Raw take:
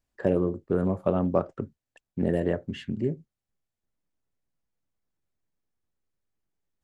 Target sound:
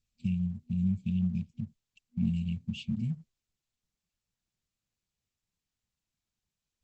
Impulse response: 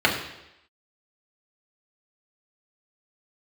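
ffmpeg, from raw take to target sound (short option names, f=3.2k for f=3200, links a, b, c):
-af "afftfilt=real='re*(1-between(b*sr/4096,240,2200))':imag='im*(1-between(b*sr/4096,240,2200))':win_size=4096:overlap=0.75" -ar 48000 -c:a libopus -b:a 12k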